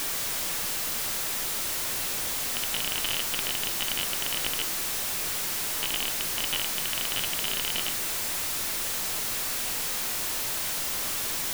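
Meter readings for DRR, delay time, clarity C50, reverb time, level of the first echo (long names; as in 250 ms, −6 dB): 11.5 dB, no echo audible, 17.0 dB, 0.40 s, no echo audible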